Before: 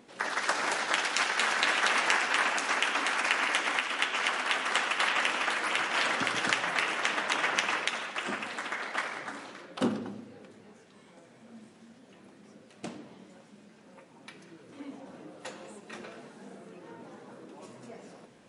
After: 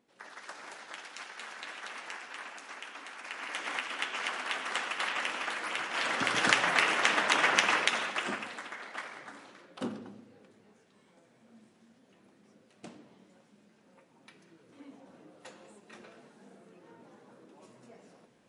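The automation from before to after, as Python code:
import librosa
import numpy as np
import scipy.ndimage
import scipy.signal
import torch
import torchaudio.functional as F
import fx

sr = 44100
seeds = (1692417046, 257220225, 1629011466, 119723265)

y = fx.gain(x, sr, db=fx.line((3.2, -16.5), (3.74, -5.5), (5.91, -5.5), (6.46, 3.0), (8.08, 3.0), (8.71, -8.0)))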